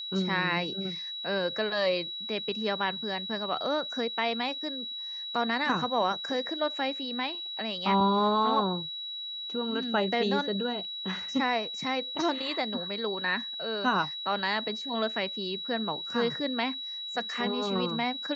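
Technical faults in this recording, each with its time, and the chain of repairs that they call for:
whistle 3,900 Hz −35 dBFS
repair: notch filter 3,900 Hz, Q 30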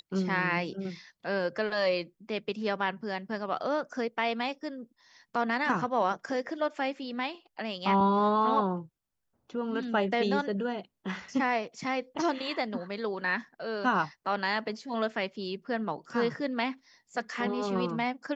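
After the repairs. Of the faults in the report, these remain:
none of them is left

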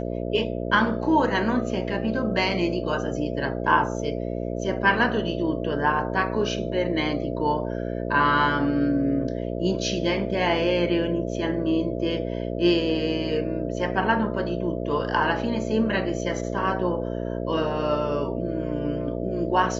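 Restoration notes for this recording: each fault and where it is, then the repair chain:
mains buzz 60 Hz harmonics 11 −29 dBFS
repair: hum removal 60 Hz, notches 11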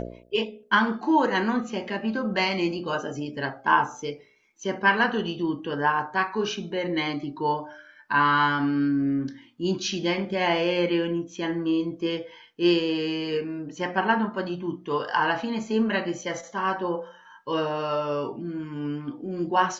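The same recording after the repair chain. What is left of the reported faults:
none of them is left

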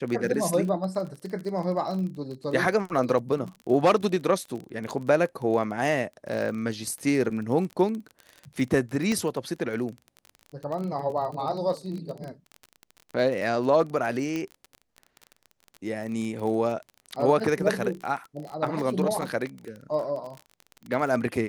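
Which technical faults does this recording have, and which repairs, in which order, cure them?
surface crackle 30 per second −32 dBFS
0:09.12: click −16 dBFS
0:14.36: click −18 dBFS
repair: click removal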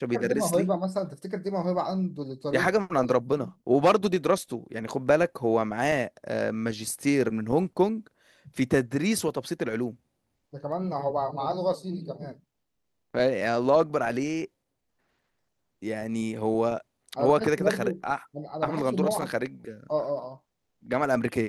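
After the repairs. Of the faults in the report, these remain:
none of them is left

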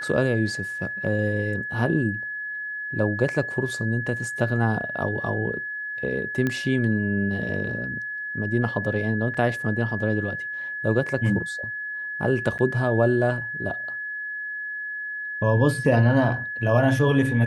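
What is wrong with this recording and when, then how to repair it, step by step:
whistle 1,700 Hz −29 dBFS
0:06.47: click −13 dBFS
0:09.34–0:09.35: drop-out 5 ms
0:12.58–0:12.59: drop-out 9 ms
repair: click removal
notch filter 1,700 Hz, Q 30
repair the gap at 0:09.34, 5 ms
repair the gap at 0:12.58, 9 ms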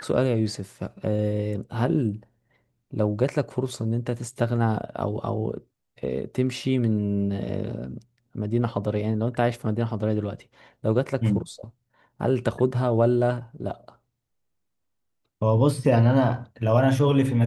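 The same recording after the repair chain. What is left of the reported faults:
none of them is left

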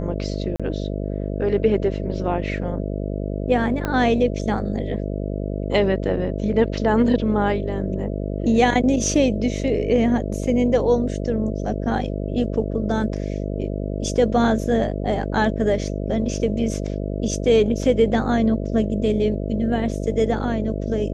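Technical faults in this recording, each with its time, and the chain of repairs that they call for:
mains buzz 50 Hz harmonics 13 −26 dBFS
0:00.56–0:00.60: drop-out 36 ms
0:03.85: click −11 dBFS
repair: click removal
hum removal 50 Hz, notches 13
repair the gap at 0:00.56, 36 ms

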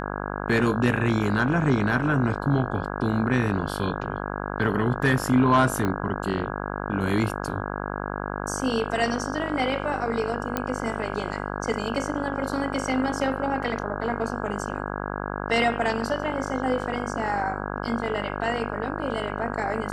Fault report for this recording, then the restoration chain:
mains buzz 50 Hz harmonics 33 −31 dBFS
0:05.85: click −14 dBFS
0:10.57: click −11 dBFS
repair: click removal
hum removal 50 Hz, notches 33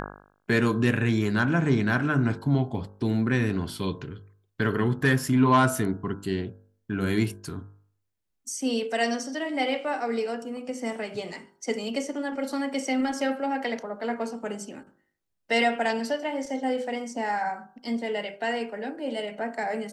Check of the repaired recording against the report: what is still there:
0:05.85: click

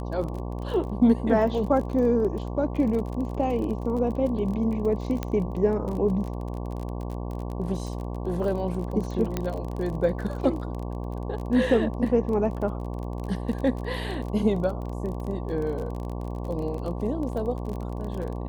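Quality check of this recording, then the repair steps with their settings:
mains buzz 60 Hz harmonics 19 −32 dBFS
surface crackle 32 per second −32 dBFS
0:05.23: click −15 dBFS
0:09.37: click −13 dBFS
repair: click removal
hum removal 60 Hz, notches 19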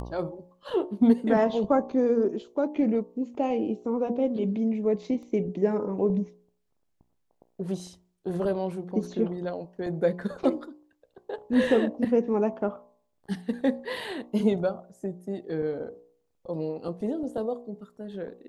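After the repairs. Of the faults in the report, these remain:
0:05.23: click

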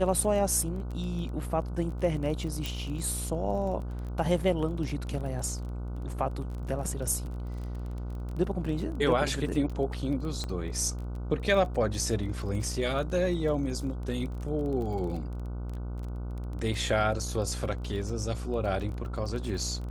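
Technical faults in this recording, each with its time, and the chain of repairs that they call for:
mains buzz 60 Hz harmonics 25 −35 dBFS
surface crackle 23 per second −36 dBFS
0:02.66: click
0:10.44: click −21 dBFS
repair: click removal
hum removal 60 Hz, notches 25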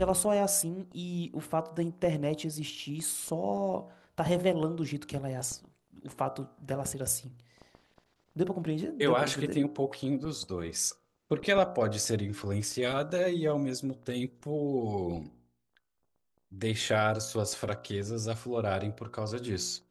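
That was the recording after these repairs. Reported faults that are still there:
none of them is left

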